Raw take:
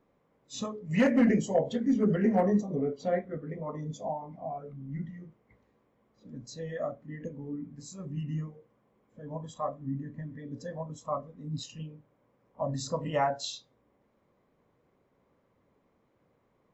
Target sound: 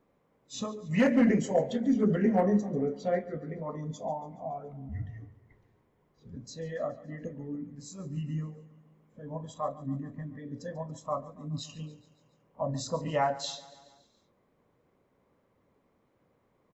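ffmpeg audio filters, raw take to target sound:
ffmpeg -i in.wav -filter_complex "[0:a]asplit=3[link_01][link_02][link_03];[link_01]afade=type=out:start_time=4.88:duration=0.02[link_04];[link_02]afreqshift=-65,afade=type=in:start_time=4.88:duration=0.02,afade=type=out:start_time=6.35:duration=0.02[link_05];[link_03]afade=type=in:start_time=6.35:duration=0.02[link_06];[link_04][link_05][link_06]amix=inputs=3:normalize=0,asplit=2[link_07][link_08];[link_08]aecho=0:1:141|282|423|564|705:0.119|0.0701|0.0414|0.0244|0.0144[link_09];[link_07][link_09]amix=inputs=2:normalize=0" out.wav

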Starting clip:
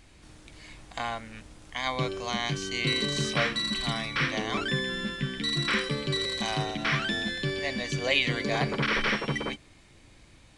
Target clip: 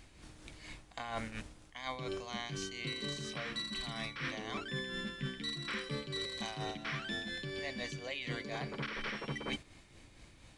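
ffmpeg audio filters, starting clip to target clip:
ffmpeg -i in.wav -af "agate=range=-6dB:threshold=-43dB:ratio=16:detection=peak,areverse,acompressor=threshold=-40dB:ratio=12,areverse,tremolo=f=4.2:d=0.43,volume=5dB" out.wav

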